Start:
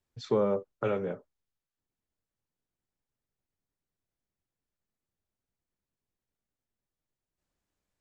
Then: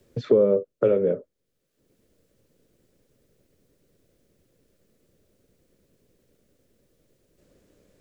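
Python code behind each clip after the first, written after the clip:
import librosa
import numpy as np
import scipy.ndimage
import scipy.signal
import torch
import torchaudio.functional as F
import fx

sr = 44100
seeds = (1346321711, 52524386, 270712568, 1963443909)

y = fx.low_shelf_res(x, sr, hz=660.0, db=7.5, q=3.0)
y = fx.band_squash(y, sr, depth_pct=70)
y = y * librosa.db_to_amplitude(-1.5)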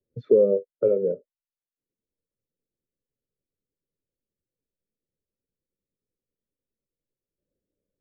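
y = fx.spectral_expand(x, sr, expansion=1.5)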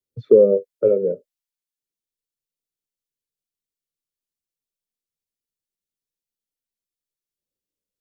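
y = fx.band_widen(x, sr, depth_pct=40)
y = y * librosa.db_to_amplitude(4.0)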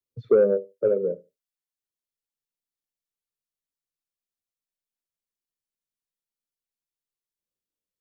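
y = fx.echo_feedback(x, sr, ms=74, feedback_pct=16, wet_db=-19.5)
y = 10.0 ** (-4.5 / 20.0) * np.tanh(y / 10.0 ** (-4.5 / 20.0))
y = y * librosa.db_to_amplitude(-4.5)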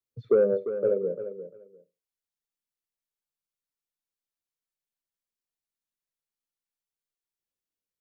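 y = fx.echo_feedback(x, sr, ms=348, feedback_pct=17, wet_db=-11)
y = y * librosa.db_to_amplitude(-3.0)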